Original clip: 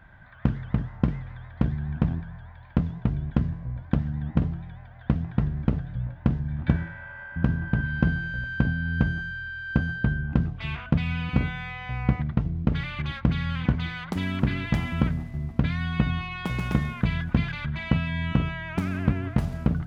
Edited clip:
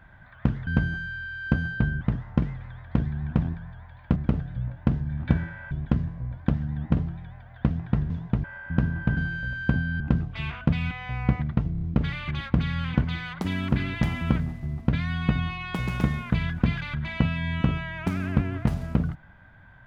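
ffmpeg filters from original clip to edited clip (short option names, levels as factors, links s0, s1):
-filter_complex "[0:a]asplit=13[s0][s1][s2][s3][s4][s5][s6][s7][s8][s9][s10][s11][s12];[s0]atrim=end=0.672[s13];[s1]atrim=start=8.908:end=10.252[s14];[s2]atrim=start=0.668:end=2.822[s15];[s3]atrim=start=5.548:end=7.102[s16];[s4]atrim=start=3.158:end=5.552[s17];[s5]atrim=start=2.818:end=3.162[s18];[s6]atrim=start=7.098:end=7.832[s19];[s7]atrim=start=8.078:end=8.912[s20];[s8]atrim=start=10.248:end=11.162[s21];[s9]atrim=start=11.708:end=12.552[s22];[s10]atrim=start=12.518:end=12.552[s23];[s11]atrim=start=12.518:end=12.552[s24];[s12]atrim=start=12.518[s25];[s13][s14]acrossfade=d=0.004:c1=hsin:c2=hsin[s26];[s26][s15]acrossfade=d=0.004:c1=hsin:c2=hsin[s27];[s27][s16]acrossfade=d=0.004:c1=hsin:c2=hsin[s28];[s28][s17]acrossfade=d=0.004:c1=hsin:c2=hsin[s29];[s29][s18]acrossfade=d=0.004:c1=hsin:c2=hsin[s30];[s30][s19]acrossfade=d=0.004:c1=hsin:c2=hsin[s31];[s31][s20]acrossfade=d=0.004:c1=hsin:c2=hsin[s32];[s32][s21]acrossfade=d=0.004:c1=hsin:c2=hsin[s33];[s33][s22]acrossfade=d=0.004:c1=hsin:c2=hsin[s34];[s34][s23]acrossfade=d=0.004:c1=hsin:c2=hsin[s35];[s35][s24]acrossfade=d=0.004:c1=hsin:c2=hsin[s36];[s36][s25]acrossfade=d=0.004:c1=hsin:c2=hsin"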